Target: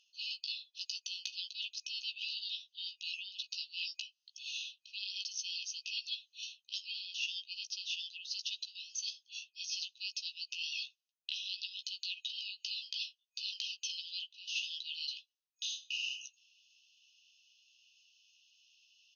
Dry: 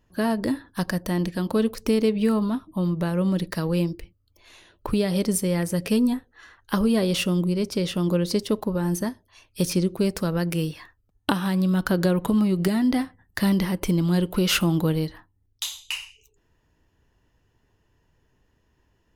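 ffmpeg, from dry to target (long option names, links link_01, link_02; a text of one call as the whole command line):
ffmpeg -i in.wav -filter_complex "[0:a]afftfilt=real='re*between(b*sr/4096,2500,6600)':imag='im*between(b*sr/4096,2500,6600)':win_size=4096:overlap=0.75,areverse,acompressor=threshold=-51dB:ratio=16,areverse,asplit=2[link_01][link_02];[link_02]adelay=15,volume=-6dB[link_03];[link_01][link_03]amix=inputs=2:normalize=0,volume=13.5dB" out.wav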